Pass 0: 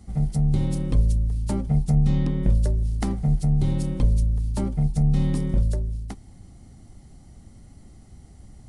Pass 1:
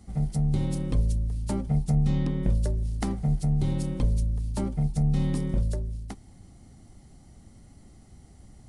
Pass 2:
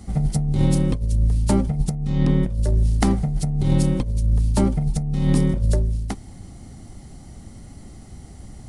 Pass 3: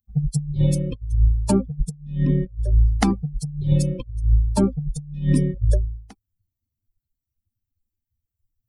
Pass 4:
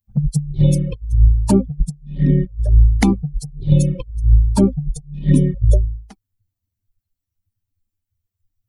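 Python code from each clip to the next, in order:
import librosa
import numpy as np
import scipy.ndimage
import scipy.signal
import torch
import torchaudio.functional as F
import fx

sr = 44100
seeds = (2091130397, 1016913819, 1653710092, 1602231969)

y1 = fx.low_shelf(x, sr, hz=140.0, db=-4.0)
y1 = F.gain(torch.from_numpy(y1), -1.5).numpy()
y2 = fx.over_compress(y1, sr, threshold_db=-26.0, ratio=-0.5)
y2 = F.gain(torch.from_numpy(y2), 8.5).numpy()
y3 = fx.bin_expand(y2, sr, power=3.0)
y3 = F.gain(torch.from_numpy(y3), 5.0).numpy()
y4 = fx.env_flanger(y3, sr, rest_ms=10.4, full_db=-14.0)
y4 = F.gain(torch.from_numpy(y4), 5.5).numpy()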